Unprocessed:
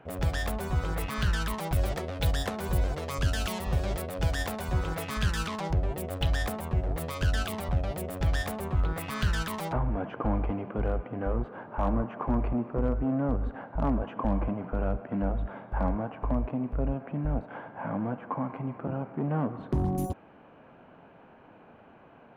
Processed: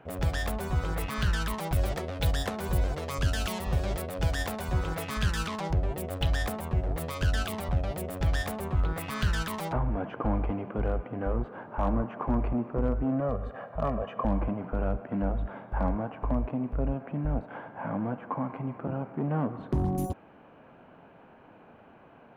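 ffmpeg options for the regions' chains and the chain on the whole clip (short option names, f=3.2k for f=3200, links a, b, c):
-filter_complex "[0:a]asettb=1/sr,asplit=3[a][b][c];[a]atrim=end=13.204[d];[b]atrim=start=13.2:end=14.25,asetpts=PTS-STARTPTS,afade=t=in:d=0.004:c=qsin,afade=t=out:st=1.046:d=0.004:c=qsin,highpass=f=150:p=1,aecho=1:1:1.7:0.7,atrim=end_sample=46305[e];[c]atrim=start=14.246[f];[d][e]acrossfade=d=0.004:c1=hsin:c2=qsin[g];[g][f]acrossfade=d=0.004:c1=qsin:c2=hsin"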